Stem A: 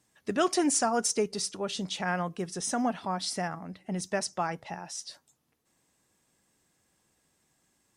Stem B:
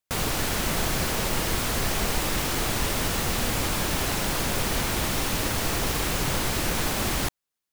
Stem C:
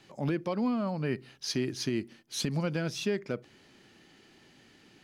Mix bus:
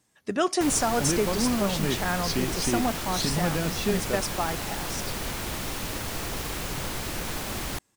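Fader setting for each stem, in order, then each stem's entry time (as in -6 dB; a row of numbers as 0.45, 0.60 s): +1.5, -6.0, +2.5 dB; 0.00, 0.50, 0.80 s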